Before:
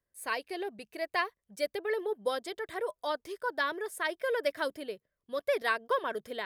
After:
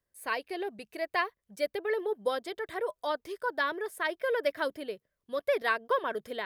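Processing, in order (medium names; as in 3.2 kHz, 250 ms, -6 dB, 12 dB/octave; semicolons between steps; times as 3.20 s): dynamic bell 7.8 kHz, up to -7 dB, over -56 dBFS, Q 0.82; trim +1.5 dB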